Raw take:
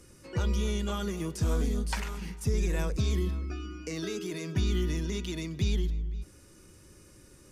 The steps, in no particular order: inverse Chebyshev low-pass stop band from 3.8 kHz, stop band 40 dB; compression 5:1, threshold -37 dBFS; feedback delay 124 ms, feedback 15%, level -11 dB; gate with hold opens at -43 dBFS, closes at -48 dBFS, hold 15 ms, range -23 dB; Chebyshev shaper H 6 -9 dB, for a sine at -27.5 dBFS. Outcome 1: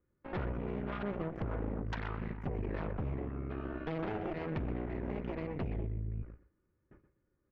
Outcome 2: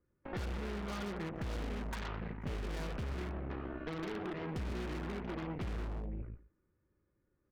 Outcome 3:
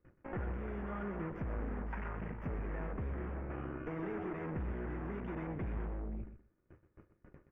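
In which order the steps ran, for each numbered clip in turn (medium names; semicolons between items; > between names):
gate with hold > inverse Chebyshev low-pass > compression > feedback delay > Chebyshev shaper; inverse Chebyshev low-pass > gate with hold > feedback delay > Chebyshev shaper > compression; Chebyshev shaper > inverse Chebyshev low-pass > compression > gate with hold > feedback delay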